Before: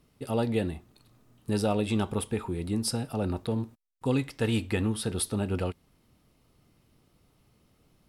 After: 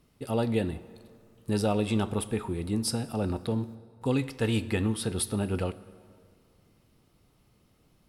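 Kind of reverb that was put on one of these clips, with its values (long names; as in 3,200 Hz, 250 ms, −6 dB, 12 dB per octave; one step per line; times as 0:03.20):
dense smooth reverb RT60 2.2 s, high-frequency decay 0.7×, DRR 16 dB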